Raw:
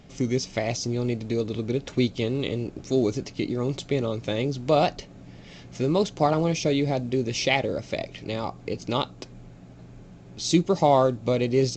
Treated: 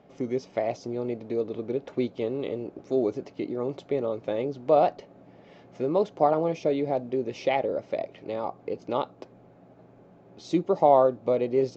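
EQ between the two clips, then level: band-pass filter 620 Hz, Q 1; +1.5 dB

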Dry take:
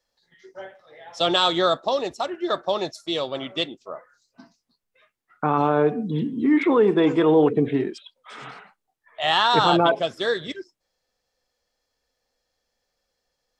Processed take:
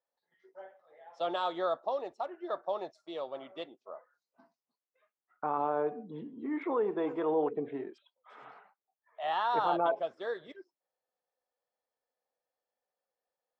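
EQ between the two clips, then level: band-pass filter 750 Hz, Q 1.1; -8.5 dB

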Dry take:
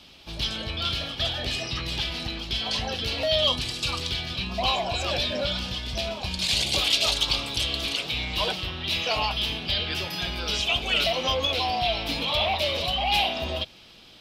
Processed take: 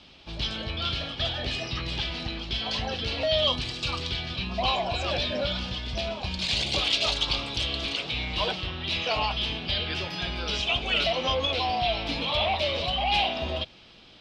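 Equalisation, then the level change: distance through air 100 m; 0.0 dB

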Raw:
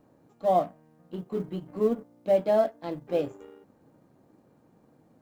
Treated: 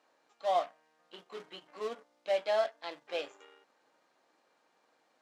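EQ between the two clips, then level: band-pass 540–4700 Hz; tilt shelf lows -10 dB, about 1.2 kHz; 0.0 dB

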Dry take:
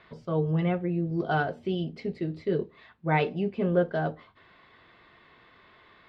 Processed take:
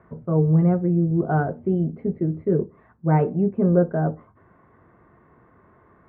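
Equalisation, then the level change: high-pass 54 Hz; low-pass 1.5 kHz 24 dB/octave; bass shelf 410 Hz +11 dB; 0.0 dB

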